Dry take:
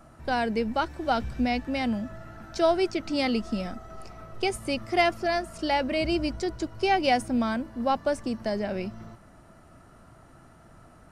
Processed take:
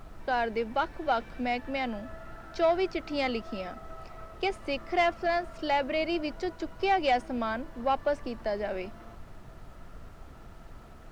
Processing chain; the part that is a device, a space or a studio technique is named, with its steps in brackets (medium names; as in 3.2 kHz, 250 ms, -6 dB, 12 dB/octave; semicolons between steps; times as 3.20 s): aircraft cabin announcement (band-pass 370–3500 Hz; saturation -16 dBFS, distortion -19 dB; brown noise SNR 13 dB)